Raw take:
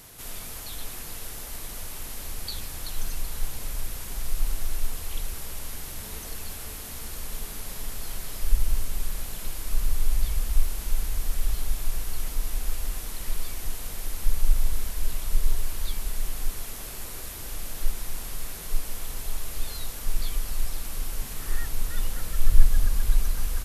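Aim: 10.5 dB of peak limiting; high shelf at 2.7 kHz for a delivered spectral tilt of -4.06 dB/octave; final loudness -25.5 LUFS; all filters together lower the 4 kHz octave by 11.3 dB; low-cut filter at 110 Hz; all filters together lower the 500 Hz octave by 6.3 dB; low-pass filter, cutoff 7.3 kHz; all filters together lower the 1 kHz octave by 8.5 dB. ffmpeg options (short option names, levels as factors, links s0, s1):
-af "highpass=110,lowpass=7300,equalizer=f=500:t=o:g=-5.5,equalizer=f=1000:t=o:g=-8,highshelf=f=2700:g=-7.5,equalizer=f=4000:t=o:g=-7,volume=14.1,alimiter=limit=0.188:level=0:latency=1"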